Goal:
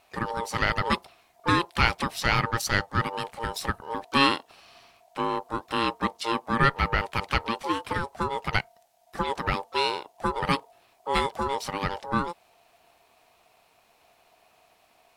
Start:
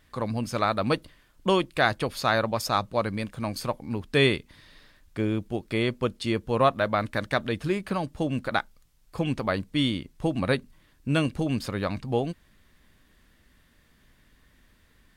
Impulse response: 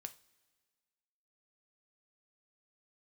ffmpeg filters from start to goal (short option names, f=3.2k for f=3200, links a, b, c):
-filter_complex "[0:a]aeval=exprs='val(0)*sin(2*PI*690*n/s)':c=same,asplit=2[a][b];[b]asetrate=58866,aresample=44100,atempo=0.749154,volume=-17dB[c];[a][c]amix=inputs=2:normalize=0,equalizer=f=560:w=1.1:g=-6.5,volume=4.5dB"